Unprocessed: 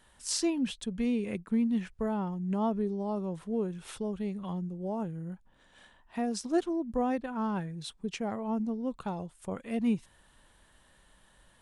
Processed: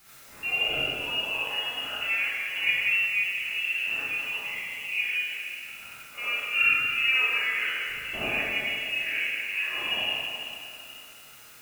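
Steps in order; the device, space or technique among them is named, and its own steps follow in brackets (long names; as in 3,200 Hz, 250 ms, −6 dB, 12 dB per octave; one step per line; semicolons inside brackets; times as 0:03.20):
peak hold with a decay on every bin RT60 2.74 s
de-essing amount 55%
scrambled radio voice (band-pass filter 380–3,000 Hz; voice inversion scrambler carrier 3,100 Hz; white noise bed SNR 22 dB)
reverb whose tail is shaped and stops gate 110 ms rising, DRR −7.5 dB
level −2 dB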